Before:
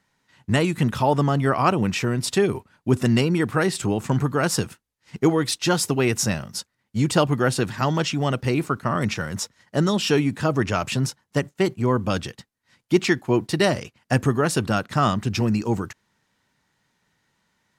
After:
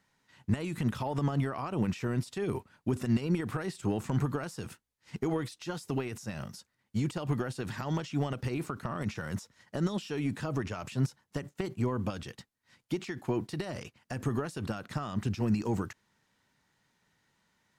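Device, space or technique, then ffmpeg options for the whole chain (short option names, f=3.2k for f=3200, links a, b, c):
de-esser from a sidechain: -filter_complex "[0:a]asplit=2[a][b];[b]highpass=f=5.9k:p=1,apad=whole_len=784336[c];[a][c]sidechaincompress=threshold=-44dB:ratio=12:attack=3.5:release=52,volume=-3.5dB"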